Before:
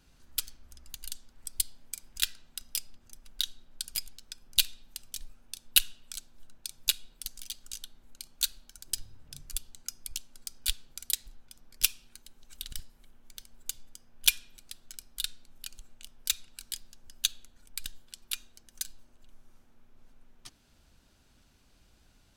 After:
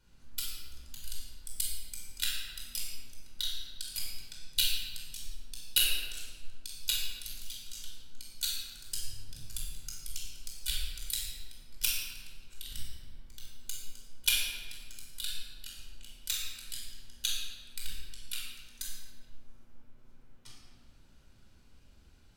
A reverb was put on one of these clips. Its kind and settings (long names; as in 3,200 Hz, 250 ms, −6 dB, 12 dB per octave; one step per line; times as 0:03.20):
rectangular room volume 1,700 cubic metres, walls mixed, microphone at 4.8 metres
level −8.5 dB